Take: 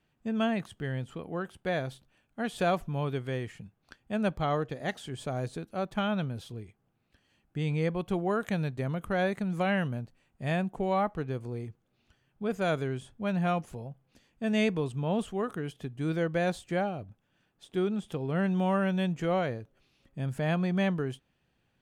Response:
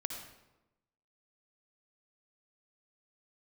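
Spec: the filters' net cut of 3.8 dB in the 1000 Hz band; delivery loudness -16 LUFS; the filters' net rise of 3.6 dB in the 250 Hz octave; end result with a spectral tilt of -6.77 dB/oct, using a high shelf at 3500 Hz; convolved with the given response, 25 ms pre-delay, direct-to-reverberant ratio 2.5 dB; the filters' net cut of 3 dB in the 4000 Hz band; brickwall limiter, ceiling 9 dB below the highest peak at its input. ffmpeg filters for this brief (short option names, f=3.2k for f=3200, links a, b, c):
-filter_complex "[0:a]equalizer=f=250:t=o:g=5.5,equalizer=f=1k:t=o:g=-6.5,highshelf=f=3.5k:g=4.5,equalizer=f=4k:t=o:g=-6.5,alimiter=limit=-22.5dB:level=0:latency=1,asplit=2[a][b];[1:a]atrim=start_sample=2205,adelay=25[c];[b][c]afir=irnorm=-1:irlink=0,volume=-3dB[d];[a][d]amix=inputs=2:normalize=0,volume=15.5dB"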